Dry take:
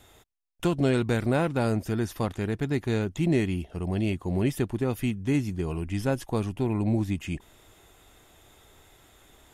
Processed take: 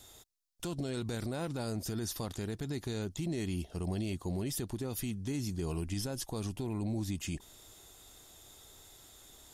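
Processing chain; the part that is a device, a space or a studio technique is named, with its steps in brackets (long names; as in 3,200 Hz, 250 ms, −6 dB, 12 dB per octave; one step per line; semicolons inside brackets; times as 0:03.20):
over-bright horn tweeter (high shelf with overshoot 3,300 Hz +8.5 dB, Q 1.5; brickwall limiter −23 dBFS, peak gain reduction 11.5 dB)
level −4 dB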